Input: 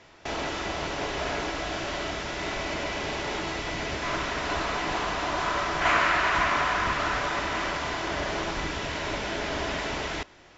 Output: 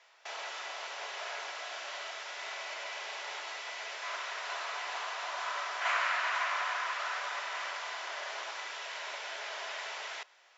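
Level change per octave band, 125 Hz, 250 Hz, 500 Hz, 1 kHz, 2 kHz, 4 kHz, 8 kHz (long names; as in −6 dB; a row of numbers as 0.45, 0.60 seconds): below −40 dB, below −30 dB, −14.0 dB, −8.5 dB, −7.0 dB, −6.5 dB, can't be measured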